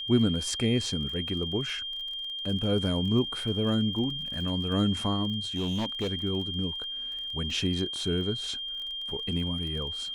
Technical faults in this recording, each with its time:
crackle 28 per s -37 dBFS
whine 3.2 kHz -33 dBFS
5.55–6.10 s: clipped -25.5 dBFS

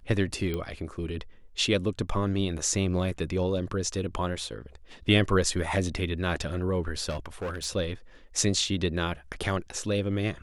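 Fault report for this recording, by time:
0.54 s: pop -19 dBFS
7.09–7.66 s: clipped -29 dBFS

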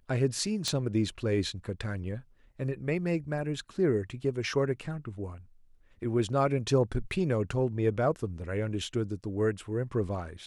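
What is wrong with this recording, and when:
0.68 s: pop -16 dBFS

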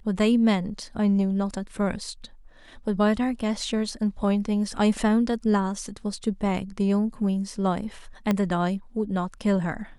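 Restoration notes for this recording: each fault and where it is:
8.31 s: pop -11 dBFS

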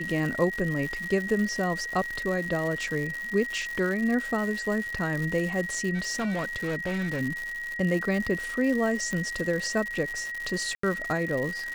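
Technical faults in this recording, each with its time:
crackle 220 per s -31 dBFS
whine 1.9 kHz -32 dBFS
5.94–7.21 s: clipped -25.5 dBFS
9.13 s: pop -18 dBFS
10.75–10.83 s: dropout 84 ms

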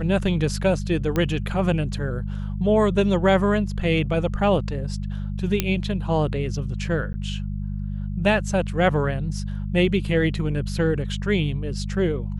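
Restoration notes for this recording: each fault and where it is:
hum 50 Hz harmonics 4 -28 dBFS
1.16 s: pop -11 dBFS
5.60 s: pop -5 dBFS
7.13–7.14 s: dropout 10 ms

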